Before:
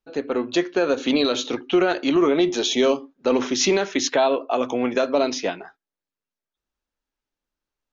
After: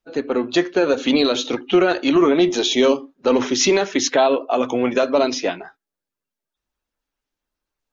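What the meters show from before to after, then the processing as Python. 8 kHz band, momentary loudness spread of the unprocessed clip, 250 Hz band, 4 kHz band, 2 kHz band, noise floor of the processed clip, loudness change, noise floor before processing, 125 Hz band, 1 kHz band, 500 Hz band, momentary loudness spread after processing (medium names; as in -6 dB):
no reading, 6 LU, +3.5 dB, +3.0 dB, +3.0 dB, under -85 dBFS, +3.0 dB, under -85 dBFS, +3.5 dB, +3.0 dB, +3.0 dB, 6 LU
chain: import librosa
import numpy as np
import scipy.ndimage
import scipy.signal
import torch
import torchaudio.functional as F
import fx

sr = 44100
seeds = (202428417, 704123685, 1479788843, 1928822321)

y = fx.spec_quant(x, sr, step_db=15)
y = y * 10.0 ** (3.5 / 20.0)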